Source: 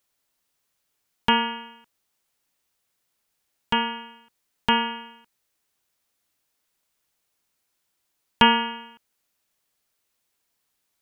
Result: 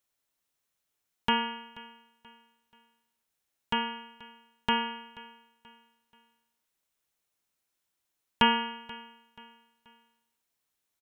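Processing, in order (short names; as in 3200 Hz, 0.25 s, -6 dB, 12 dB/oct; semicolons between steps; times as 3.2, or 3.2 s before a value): notch 4700 Hz, Q 17; on a send: feedback echo 0.482 s, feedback 39%, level -20.5 dB; on the sum: gain -6.5 dB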